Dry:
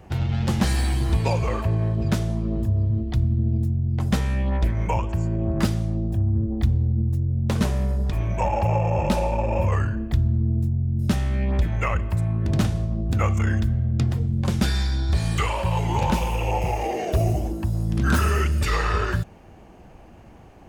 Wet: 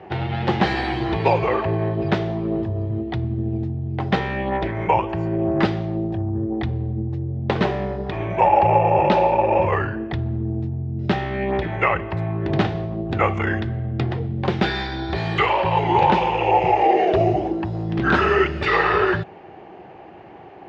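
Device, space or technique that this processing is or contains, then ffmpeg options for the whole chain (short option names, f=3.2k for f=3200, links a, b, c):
kitchen radio: -af "highpass=170,equalizer=f=230:t=q:w=4:g=-8,equalizer=f=380:t=q:w=4:g=8,equalizer=f=790:t=q:w=4:g=7,equalizer=f=1.9k:t=q:w=4:g=4,lowpass=f=3.8k:w=0.5412,lowpass=f=3.8k:w=1.3066,volume=5.5dB"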